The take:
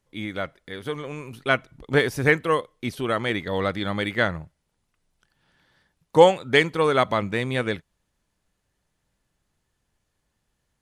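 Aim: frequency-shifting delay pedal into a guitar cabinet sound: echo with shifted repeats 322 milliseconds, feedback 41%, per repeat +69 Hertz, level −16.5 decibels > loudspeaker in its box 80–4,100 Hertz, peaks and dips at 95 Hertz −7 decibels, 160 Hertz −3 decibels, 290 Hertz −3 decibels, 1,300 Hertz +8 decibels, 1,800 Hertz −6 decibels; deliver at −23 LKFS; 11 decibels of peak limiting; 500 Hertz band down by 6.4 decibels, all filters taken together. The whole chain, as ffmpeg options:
ffmpeg -i in.wav -filter_complex "[0:a]equalizer=frequency=500:width_type=o:gain=-7,alimiter=limit=-16dB:level=0:latency=1,asplit=5[link_01][link_02][link_03][link_04][link_05];[link_02]adelay=322,afreqshift=69,volume=-16.5dB[link_06];[link_03]adelay=644,afreqshift=138,volume=-24.2dB[link_07];[link_04]adelay=966,afreqshift=207,volume=-32dB[link_08];[link_05]adelay=1288,afreqshift=276,volume=-39.7dB[link_09];[link_01][link_06][link_07][link_08][link_09]amix=inputs=5:normalize=0,highpass=80,equalizer=frequency=95:width_type=q:width=4:gain=-7,equalizer=frequency=160:width_type=q:width=4:gain=-3,equalizer=frequency=290:width_type=q:width=4:gain=-3,equalizer=frequency=1300:width_type=q:width=4:gain=8,equalizer=frequency=1800:width_type=q:width=4:gain=-6,lowpass=frequency=4100:width=0.5412,lowpass=frequency=4100:width=1.3066,volume=6.5dB" out.wav

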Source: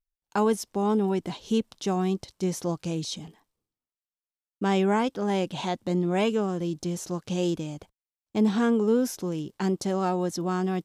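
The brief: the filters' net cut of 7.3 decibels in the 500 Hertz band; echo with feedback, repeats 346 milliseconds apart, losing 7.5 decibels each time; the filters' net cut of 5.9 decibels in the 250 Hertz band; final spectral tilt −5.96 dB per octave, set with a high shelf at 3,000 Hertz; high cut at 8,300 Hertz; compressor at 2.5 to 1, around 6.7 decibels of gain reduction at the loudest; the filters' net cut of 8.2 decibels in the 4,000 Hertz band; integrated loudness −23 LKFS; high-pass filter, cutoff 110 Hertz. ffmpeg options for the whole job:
ffmpeg -i in.wav -af "highpass=110,lowpass=8300,equalizer=frequency=250:width_type=o:gain=-6,equalizer=frequency=500:width_type=o:gain=-7,highshelf=frequency=3000:gain=-8,equalizer=frequency=4000:width_type=o:gain=-4.5,acompressor=threshold=-35dB:ratio=2.5,aecho=1:1:346|692|1038|1384|1730:0.422|0.177|0.0744|0.0312|0.0131,volume=14.5dB" out.wav

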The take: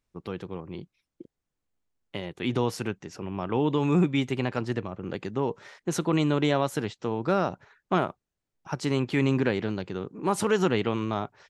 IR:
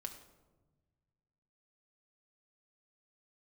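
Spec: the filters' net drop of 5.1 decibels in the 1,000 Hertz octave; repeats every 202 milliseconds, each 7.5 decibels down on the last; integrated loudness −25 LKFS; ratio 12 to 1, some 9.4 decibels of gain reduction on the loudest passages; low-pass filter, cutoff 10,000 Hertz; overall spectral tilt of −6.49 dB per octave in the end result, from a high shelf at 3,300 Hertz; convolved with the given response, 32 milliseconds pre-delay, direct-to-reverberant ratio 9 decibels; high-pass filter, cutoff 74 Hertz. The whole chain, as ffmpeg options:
-filter_complex "[0:a]highpass=74,lowpass=10000,equalizer=frequency=1000:width_type=o:gain=-6,highshelf=frequency=3300:gain=-7.5,acompressor=threshold=-29dB:ratio=12,aecho=1:1:202|404|606|808|1010:0.422|0.177|0.0744|0.0312|0.0131,asplit=2[link_01][link_02];[1:a]atrim=start_sample=2205,adelay=32[link_03];[link_02][link_03]afir=irnorm=-1:irlink=0,volume=-6dB[link_04];[link_01][link_04]amix=inputs=2:normalize=0,volume=10dB"

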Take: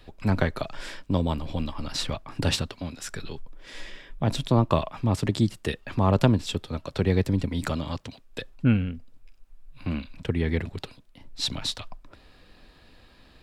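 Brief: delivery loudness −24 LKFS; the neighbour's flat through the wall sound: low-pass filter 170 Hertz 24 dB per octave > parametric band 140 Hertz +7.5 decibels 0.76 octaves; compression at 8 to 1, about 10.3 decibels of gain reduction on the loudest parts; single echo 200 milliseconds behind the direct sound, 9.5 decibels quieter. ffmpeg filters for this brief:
ffmpeg -i in.wav -af "acompressor=threshold=-25dB:ratio=8,lowpass=frequency=170:width=0.5412,lowpass=frequency=170:width=1.3066,equalizer=frequency=140:width_type=o:width=0.76:gain=7.5,aecho=1:1:200:0.335,volume=9dB" out.wav

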